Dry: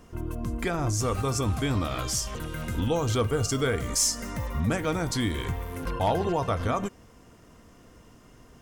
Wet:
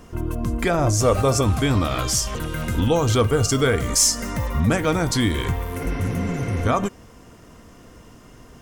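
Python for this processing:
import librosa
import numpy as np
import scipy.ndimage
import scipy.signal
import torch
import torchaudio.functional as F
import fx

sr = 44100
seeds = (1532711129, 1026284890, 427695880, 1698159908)

y = fx.peak_eq(x, sr, hz=590.0, db=fx.line((0.68, 7.0), (1.41, 14.0)), octaves=0.41, at=(0.68, 1.41), fade=0.02)
y = fx.spec_repair(y, sr, seeds[0], start_s=5.82, length_s=0.82, low_hz=220.0, high_hz=6000.0, source='before')
y = F.gain(torch.from_numpy(y), 7.0).numpy()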